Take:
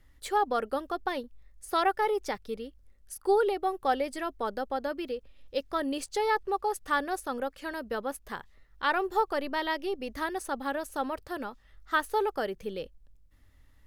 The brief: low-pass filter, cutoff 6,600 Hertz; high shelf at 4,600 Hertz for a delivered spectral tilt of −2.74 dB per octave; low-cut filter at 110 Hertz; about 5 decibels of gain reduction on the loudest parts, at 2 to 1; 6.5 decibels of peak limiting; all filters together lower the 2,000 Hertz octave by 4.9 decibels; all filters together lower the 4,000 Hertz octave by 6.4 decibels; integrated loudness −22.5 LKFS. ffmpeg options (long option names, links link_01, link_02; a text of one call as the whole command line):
ffmpeg -i in.wav -af "highpass=110,lowpass=6600,equalizer=frequency=2000:width_type=o:gain=-6,equalizer=frequency=4000:width_type=o:gain=-8,highshelf=frequency=4600:gain=5,acompressor=threshold=-30dB:ratio=2,volume=14.5dB,alimiter=limit=-11dB:level=0:latency=1" out.wav